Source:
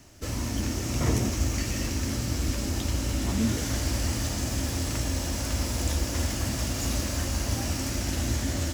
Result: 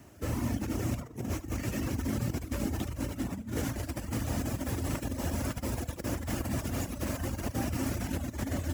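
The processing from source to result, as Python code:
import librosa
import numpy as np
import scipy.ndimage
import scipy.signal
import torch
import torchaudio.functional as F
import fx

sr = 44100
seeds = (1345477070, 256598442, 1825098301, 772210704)

y = fx.over_compress(x, sr, threshold_db=-29.0, ratio=-0.5)
y = scipy.signal.sosfilt(scipy.signal.butter(2, 64.0, 'highpass', fs=sr, output='sos'), y)
y = fx.peak_eq(y, sr, hz=5100.0, db=-12.0, octaves=1.8)
y = y + 10.0 ** (-8.0 / 20.0) * np.pad(y, (int(75 * sr / 1000.0), 0))[:len(y)]
y = fx.dereverb_blind(y, sr, rt60_s=0.85)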